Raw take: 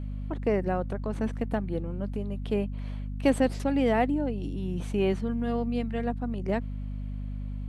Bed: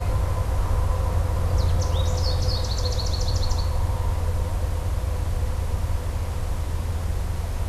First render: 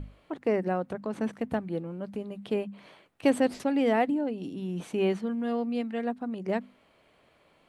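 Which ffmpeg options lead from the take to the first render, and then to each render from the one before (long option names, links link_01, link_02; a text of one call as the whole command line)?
ffmpeg -i in.wav -af "bandreject=frequency=50:width_type=h:width=6,bandreject=frequency=100:width_type=h:width=6,bandreject=frequency=150:width_type=h:width=6,bandreject=frequency=200:width_type=h:width=6,bandreject=frequency=250:width_type=h:width=6" out.wav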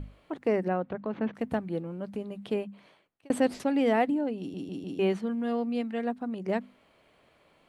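ffmpeg -i in.wav -filter_complex "[0:a]asettb=1/sr,asplit=3[link_01][link_02][link_03];[link_01]atrim=end=0.684[link_04];[link_02]atrim=start=0.68:end=1.35,asetpts=PTS-STARTPTS,afade=type=in:duration=0.004:curve=qsin,afade=type=out:start_time=0.666:duration=0.004:curve=qsin,lowpass=frequency=3500:width=0.5412,lowpass=frequency=3500:width=1.3066[link_05];[link_03]atrim=start=1.346[link_06];[link_04][link_05]acrossfade=duration=0.004:curve1=hsin:curve2=qsin[link_07];[link_07][link_06]acrossfade=duration=0.004:curve1=qsin:curve2=hsin,asplit=6[link_08][link_09][link_10][link_11][link_12][link_13];[link_08]atrim=end=3.3,asetpts=PTS-STARTPTS,afade=type=out:start_time=2.46:duration=0.84[link_14];[link_09]atrim=start=3.3:end=4.542,asetpts=PTS-STARTPTS,afade=type=in:duration=0.004:curve=hsin[link_15];[link_10]atrim=start=4.388:end=4.542[link_16];[link_11]atrim=start=4.388:end=4.542[link_17];[link_12]atrim=start=4.388:end=4.542[link_18];[link_13]atrim=start=4.988[link_19];[link_14][link_15]concat=n=2:v=0:a=1[link_20];[link_20][link_16]acrossfade=duration=0.004:curve1=hsin:curve2=hsin[link_21];[link_21][link_17]acrossfade=duration=0.004:curve1=hsin:curve2=hsin[link_22];[link_22][link_18]acrossfade=duration=0.004:curve1=hsin:curve2=hsin[link_23];[link_23][link_19]acrossfade=duration=0.004:curve1=hsin:curve2=hsin" out.wav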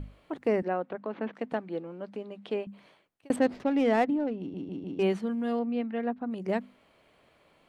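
ffmpeg -i in.wav -filter_complex "[0:a]asettb=1/sr,asplit=3[link_01][link_02][link_03];[link_01]atrim=end=0.624[link_04];[link_02]atrim=start=0.62:end=2.67,asetpts=PTS-STARTPTS,afade=type=in:duration=0.004:curve=qsin,afade=type=out:start_time=2.046:duration=0.004:curve=qsin,highpass=280,lowpass=5200[link_05];[link_03]atrim=start=2.666[link_06];[link_04][link_05]acrossfade=duration=0.004:curve1=hsin:curve2=qsin[link_07];[link_07][link_06]acrossfade=duration=0.004:curve1=qsin:curve2=hsin,asettb=1/sr,asplit=3[link_08][link_09][link_10];[link_08]atrim=end=3.364[link_11];[link_09]atrim=start=3.36:end=5.03,asetpts=PTS-STARTPTS,afade=type=in:duration=0.004:curve=qsin,afade=type=out:start_time=1.666:duration=0.004:curve=qsin,adynamicsmooth=sensitivity=7.5:basefreq=1800[link_12];[link_10]atrim=start=5.026[link_13];[link_11][link_12]acrossfade=duration=0.004:curve1=hsin:curve2=qsin[link_14];[link_14][link_13]acrossfade=duration=0.004:curve1=qsin:curve2=hsin,asettb=1/sr,asplit=3[link_15][link_16][link_17];[link_15]atrim=end=5.594[link_18];[link_16]atrim=start=5.59:end=6.31,asetpts=PTS-STARTPTS,afade=type=in:duration=0.004:curve=qsin,afade=type=out:start_time=0.716:duration=0.004:curve=qsin,lowpass=2700[link_19];[link_17]atrim=start=6.306[link_20];[link_18][link_19]acrossfade=duration=0.004:curve1=hsin:curve2=qsin[link_21];[link_21][link_20]acrossfade=duration=0.004:curve1=qsin:curve2=hsin" out.wav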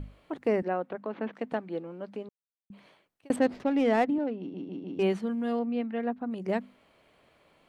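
ffmpeg -i in.wav -filter_complex "[0:a]asettb=1/sr,asplit=3[link_01][link_02][link_03];[link_01]atrim=end=4.184[link_04];[link_02]atrim=start=4.18:end=4.95,asetpts=PTS-STARTPTS,afade=type=in:duration=0.004:curve=qsin,afade=type=out:start_time=0.766:duration=0.004:curve=qsin,highpass=170,lowpass=5400[link_05];[link_03]atrim=start=4.946[link_06];[link_04][link_05]acrossfade=duration=0.004:curve1=hsin:curve2=qsin[link_07];[link_07][link_06]acrossfade=duration=0.004:curve1=qsin:curve2=hsin,asplit=3[link_08][link_09][link_10];[link_08]atrim=end=2.29,asetpts=PTS-STARTPTS,afade=type=out:start_time=2.286:duration=0.004:curve=hsin[link_11];[link_09]atrim=start=2.29:end=2.7,asetpts=PTS-STARTPTS,volume=0[link_12];[link_10]atrim=start=2.7,asetpts=PTS-STARTPTS,afade=type=in:duration=0.004:curve=hsin[link_13];[link_11][link_12][link_13]concat=n=3:v=0:a=1" out.wav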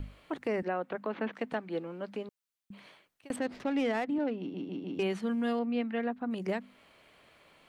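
ffmpeg -i in.wav -filter_complex "[0:a]acrossover=split=650|1100[link_01][link_02][link_03];[link_03]acontrast=36[link_04];[link_01][link_02][link_04]amix=inputs=3:normalize=0,alimiter=limit=-22.5dB:level=0:latency=1:release=234" out.wav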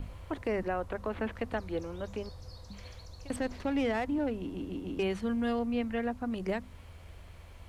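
ffmpeg -i in.wav -i bed.wav -filter_complex "[1:a]volume=-24dB[link_01];[0:a][link_01]amix=inputs=2:normalize=0" out.wav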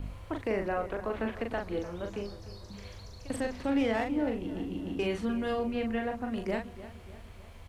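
ffmpeg -i in.wav -filter_complex "[0:a]asplit=2[link_01][link_02];[link_02]adelay=40,volume=-4.5dB[link_03];[link_01][link_03]amix=inputs=2:normalize=0,asplit=2[link_04][link_05];[link_05]adelay=301,lowpass=frequency=4000:poles=1,volume=-15dB,asplit=2[link_06][link_07];[link_07]adelay=301,lowpass=frequency=4000:poles=1,volume=0.5,asplit=2[link_08][link_09];[link_09]adelay=301,lowpass=frequency=4000:poles=1,volume=0.5,asplit=2[link_10][link_11];[link_11]adelay=301,lowpass=frequency=4000:poles=1,volume=0.5,asplit=2[link_12][link_13];[link_13]adelay=301,lowpass=frequency=4000:poles=1,volume=0.5[link_14];[link_04][link_06][link_08][link_10][link_12][link_14]amix=inputs=6:normalize=0" out.wav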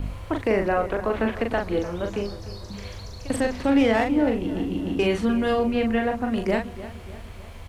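ffmpeg -i in.wav -af "volume=9dB" out.wav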